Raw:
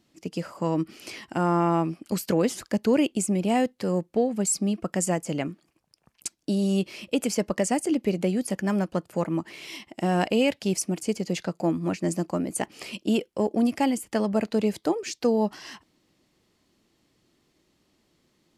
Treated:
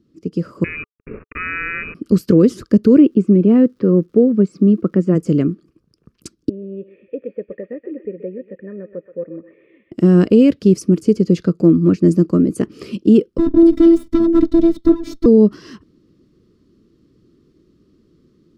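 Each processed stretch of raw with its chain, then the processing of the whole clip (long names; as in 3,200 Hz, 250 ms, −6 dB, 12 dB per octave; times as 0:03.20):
0:00.64–0:01.95: bit-depth reduction 6 bits, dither none + voice inversion scrambler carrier 2,700 Hz
0:02.97–0:05.14: band-pass filter 160–2,300 Hz + surface crackle 410 per second −54 dBFS
0:06.49–0:09.92: formant resonators in series e + low-shelf EQ 380 Hz −6.5 dB + feedback echo with a high-pass in the loop 128 ms, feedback 71%, high-pass 1,100 Hz, level −6 dB
0:13.38–0:15.26: lower of the sound and its delayed copy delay 0.94 ms + phases set to zero 334 Hz + hollow resonant body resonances 280/620/3,700 Hz, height 16 dB, ringing for 65 ms
whole clip: drawn EQ curve 430 Hz 0 dB, 810 Hz −28 dB, 1,200 Hz −9 dB, 2,100 Hz −20 dB, 5,100 Hz −15 dB, 7,400 Hz −22 dB; automatic gain control gain up to 6 dB; boost into a limiter +10 dB; level −1 dB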